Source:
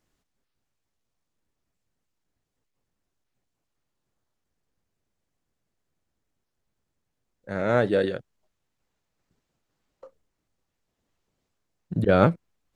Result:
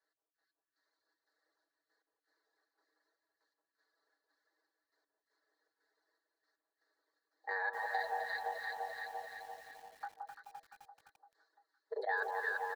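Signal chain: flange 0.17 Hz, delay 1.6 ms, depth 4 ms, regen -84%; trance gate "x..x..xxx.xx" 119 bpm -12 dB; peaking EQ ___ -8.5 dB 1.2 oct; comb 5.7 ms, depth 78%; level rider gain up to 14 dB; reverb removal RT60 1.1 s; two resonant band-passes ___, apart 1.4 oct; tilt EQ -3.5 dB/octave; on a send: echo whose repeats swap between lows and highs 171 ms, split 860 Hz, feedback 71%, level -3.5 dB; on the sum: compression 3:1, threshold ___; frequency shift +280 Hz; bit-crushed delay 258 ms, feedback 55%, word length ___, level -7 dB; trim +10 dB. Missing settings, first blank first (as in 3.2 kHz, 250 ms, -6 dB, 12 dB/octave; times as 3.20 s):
2.4 kHz, 2.4 kHz, -49 dBFS, 11-bit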